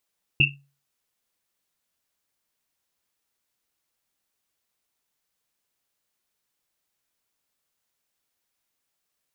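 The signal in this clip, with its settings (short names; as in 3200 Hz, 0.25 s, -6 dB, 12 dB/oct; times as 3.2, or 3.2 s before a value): Risset drum, pitch 140 Hz, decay 0.37 s, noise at 2700 Hz, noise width 180 Hz, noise 70%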